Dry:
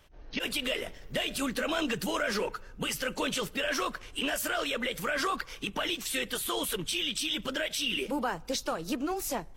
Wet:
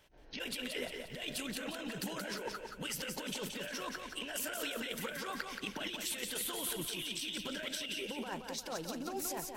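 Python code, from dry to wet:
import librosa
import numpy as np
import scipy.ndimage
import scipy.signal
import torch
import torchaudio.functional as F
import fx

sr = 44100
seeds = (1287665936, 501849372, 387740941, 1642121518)

y = fx.low_shelf(x, sr, hz=100.0, db=-10.5)
y = fx.notch(y, sr, hz=1200.0, q=7.3)
y = fx.over_compress(y, sr, threshold_db=-34.0, ratio=-0.5)
y = fx.echo_feedback(y, sr, ms=176, feedback_pct=45, wet_db=-5.5)
y = y * librosa.db_to_amplitude(-6.0)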